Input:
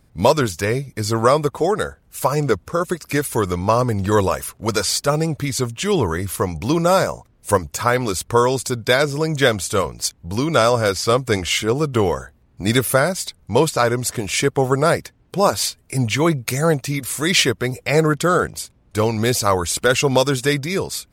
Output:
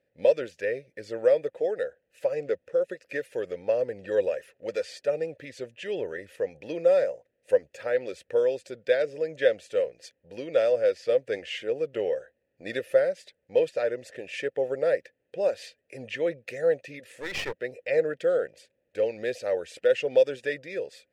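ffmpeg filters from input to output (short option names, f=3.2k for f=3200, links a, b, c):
-filter_complex "[0:a]asplit=3[a][b][c];[a]bandpass=f=530:t=q:w=8,volume=0dB[d];[b]bandpass=f=1.84k:t=q:w=8,volume=-6dB[e];[c]bandpass=f=2.48k:t=q:w=8,volume=-9dB[f];[d][e][f]amix=inputs=3:normalize=0,asettb=1/sr,asplit=3[g][h][i];[g]atrim=end=17.144[j];[h]atrim=start=17.14:end=17.62,asetpts=PTS-STARTPTS,afade=t=in:d=0.004:c=qsin,afade=t=out:st=0.476:d=0.004:c=qsin,aeval=exprs='clip(val(0),-1,0.0141)':c=same[k];[i]atrim=start=17.616[l];[j][k]acrossfade=d=0.004:c1=hsin:c2=qsin[m];[m][l]acrossfade=d=0.004:c1=qsin:c2=hsin"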